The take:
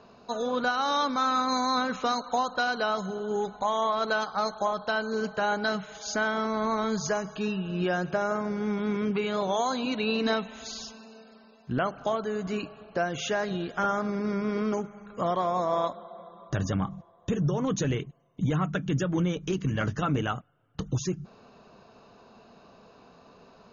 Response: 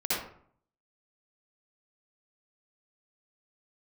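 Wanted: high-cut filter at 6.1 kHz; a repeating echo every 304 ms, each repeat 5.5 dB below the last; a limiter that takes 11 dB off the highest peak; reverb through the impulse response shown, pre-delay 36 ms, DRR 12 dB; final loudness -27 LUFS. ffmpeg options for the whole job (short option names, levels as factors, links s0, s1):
-filter_complex "[0:a]lowpass=6100,alimiter=level_in=1.26:limit=0.0631:level=0:latency=1,volume=0.794,aecho=1:1:304|608|912|1216|1520|1824|2128:0.531|0.281|0.149|0.079|0.0419|0.0222|0.0118,asplit=2[s0][s1];[1:a]atrim=start_sample=2205,adelay=36[s2];[s1][s2]afir=irnorm=-1:irlink=0,volume=0.0891[s3];[s0][s3]amix=inputs=2:normalize=0,volume=2.11"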